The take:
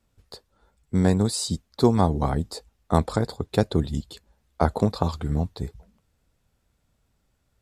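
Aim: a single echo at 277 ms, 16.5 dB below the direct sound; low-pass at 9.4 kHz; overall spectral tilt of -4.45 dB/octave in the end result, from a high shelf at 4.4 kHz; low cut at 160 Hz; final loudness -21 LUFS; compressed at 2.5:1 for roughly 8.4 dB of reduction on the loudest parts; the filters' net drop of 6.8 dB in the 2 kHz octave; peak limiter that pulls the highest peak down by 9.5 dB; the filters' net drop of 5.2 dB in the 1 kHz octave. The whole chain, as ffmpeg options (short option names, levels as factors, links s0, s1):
-af "highpass=160,lowpass=9400,equalizer=f=1000:t=o:g=-6,equalizer=f=2000:t=o:g=-7.5,highshelf=f=4400:g=4.5,acompressor=threshold=0.0398:ratio=2.5,alimiter=limit=0.0891:level=0:latency=1,aecho=1:1:277:0.15,volume=5.01"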